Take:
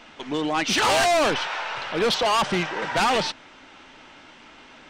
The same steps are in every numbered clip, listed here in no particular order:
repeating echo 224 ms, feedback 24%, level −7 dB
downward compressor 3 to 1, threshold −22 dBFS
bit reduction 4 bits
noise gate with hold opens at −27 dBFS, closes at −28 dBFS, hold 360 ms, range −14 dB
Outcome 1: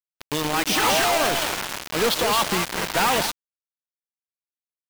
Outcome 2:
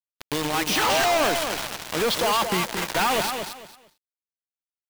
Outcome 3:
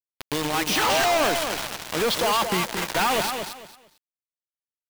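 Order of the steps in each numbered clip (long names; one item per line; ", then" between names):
downward compressor, then repeating echo, then bit reduction, then noise gate with hold
bit reduction, then downward compressor, then repeating echo, then noise gate with hold
noise gate with hold, then bit reduction, then downward compressor, then repeating echo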